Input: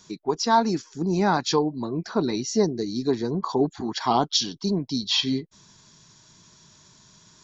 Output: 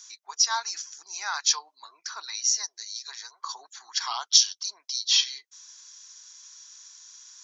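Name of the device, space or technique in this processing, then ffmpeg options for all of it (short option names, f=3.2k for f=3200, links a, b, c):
headphones lying on a table: -filter_complex "[0:a]highpass=f=1.2k:w=0.5412,highpass=f=1.2k:w=1.3066,equalizer=f=6k:t=o:w=0.5:g=12,asettb=1/sr,asplit=3[a][b][c];[a]atrim=end=2.254[d];[b]atrim=start=2.25:end=3.45,asetpts=PTS-STARTPTS,afade=t=in:d=0.004:c=qsin,afade=t=out:st=1.196:d=0.004:c=qsin,highpass=650[e];[c]atrim=start=3.446[f];[d][e]acrossfade=d=0.004:c1=hsin:c2=qsin[g];[g][f]acrossfade=d=0.004:c1=qsin:c2=hsin,volume=-1dB"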